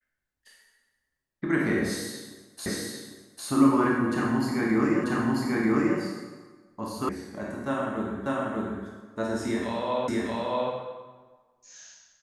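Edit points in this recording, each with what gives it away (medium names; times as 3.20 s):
2.66 s: repeat of the last 0.8 s
5.04 s: repeat of the last 0.94 s
7.09 s: sound stops dead
8.26 s: repeat of the last 0.59 s
10.08 s: repeat of the last 0.63 s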